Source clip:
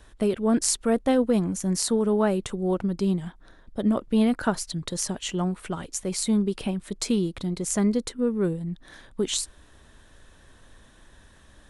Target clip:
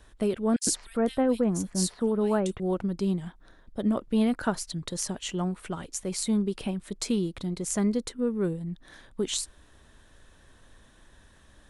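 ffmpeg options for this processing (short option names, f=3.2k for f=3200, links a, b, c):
-filter_complex "[0:a]asettb=1/sr,asplit=3[a][b][c];[a]atrim=end=0.564[d];[b]atrim=start=0.56:end=2.6,asetpts=PTS-STARTPTS,afade=t=in:d=0.004:c=qsin,afade=t=out:st=2.036:d=0.004:c=qsin,acrossover=split=2400[e][f];[e]adelay=110[g];[g][f]amix=inputs=2:normalize=0,atrim=end_sample=89964[h];[c]atrim=start=2.596[i];[d][h]acrossfade=d=0.004:c1=hsin:c2=qsin[j];[j][i]acrossfade=d=0.004:c1=qsin:c2=hsin,volume=-3dB"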